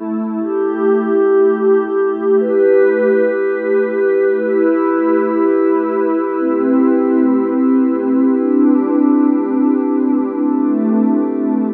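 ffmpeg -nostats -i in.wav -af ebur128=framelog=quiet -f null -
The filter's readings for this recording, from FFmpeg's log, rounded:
Integrated loudness:
  I:         -14.2 LUFS
  Threshold: -24.2 LUFS
Loudness range:
  LRA:         1.0 LU
  Threshold: -34.0 LUFS
  LRA low:   -14.5 LUFS
  LRA high:  -13.5 LUFS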